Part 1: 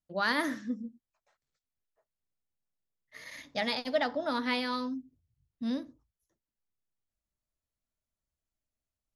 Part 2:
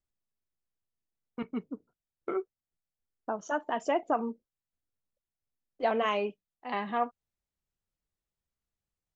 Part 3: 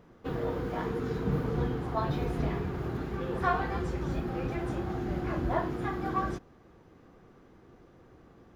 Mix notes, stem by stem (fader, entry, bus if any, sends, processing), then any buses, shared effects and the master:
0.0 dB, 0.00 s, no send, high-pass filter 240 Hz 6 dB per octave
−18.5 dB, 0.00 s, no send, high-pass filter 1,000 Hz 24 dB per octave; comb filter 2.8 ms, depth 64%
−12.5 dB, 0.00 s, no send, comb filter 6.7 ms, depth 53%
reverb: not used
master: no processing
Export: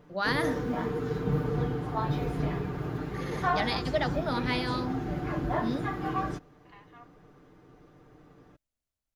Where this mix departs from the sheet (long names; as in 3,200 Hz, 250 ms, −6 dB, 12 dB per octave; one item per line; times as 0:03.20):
stem 1: missing high-pass filter 240 Hz 6 dB per octave
stem 3 −12.5 dB → −0.5 dB